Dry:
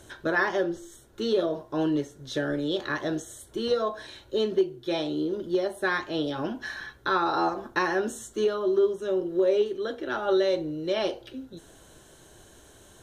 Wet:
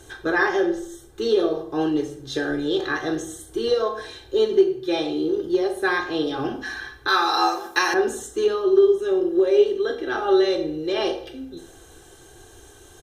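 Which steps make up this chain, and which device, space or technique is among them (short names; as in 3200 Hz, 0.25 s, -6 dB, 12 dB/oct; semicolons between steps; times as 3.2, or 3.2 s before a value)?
microphone above a desk (comb 2.5 ms, depth 70%; reverb RT60 0.60 s, pre-delay 15 ms, DRR 5.5 dB); 7.08–7.94 tilt +4.5 dB/oct; gain +2 dB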